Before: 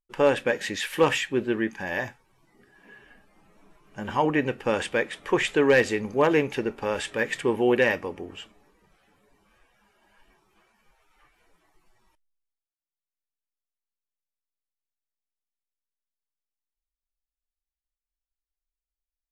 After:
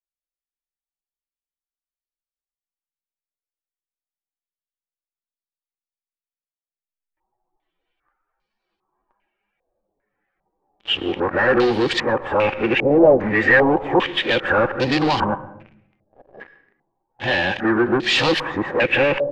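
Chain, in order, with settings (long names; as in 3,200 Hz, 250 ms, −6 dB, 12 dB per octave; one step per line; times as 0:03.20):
played backwards from end to start
dynamic equaliser 440 Hz, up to −6 dB, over −36 dBFS, Q 1.9
leveller curve on the samples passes 5
hollow resonant body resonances 350/520/770 Hz, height 7 dB, ringing for 40 ms
on a send at −15.5 dB: convolution reverb RT60 0.70 s, pre-delay 108 ms
on the sum: low-pass on a step sequencer 2.5 Hz 620–4,300 Hz
level −7 dB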